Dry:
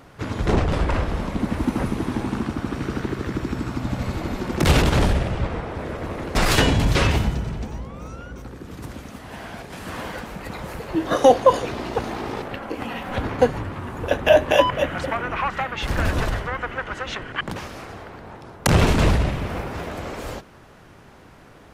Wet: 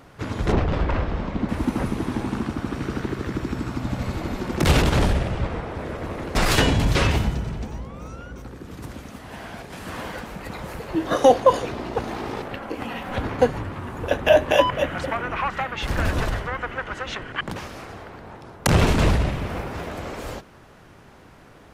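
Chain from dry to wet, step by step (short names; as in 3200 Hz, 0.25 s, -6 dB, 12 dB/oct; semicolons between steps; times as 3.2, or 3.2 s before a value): 0.52–1.49 air absorption 120 m; 11.4–12.08 mismatched tape noise reduction decoder only; gain -1 dB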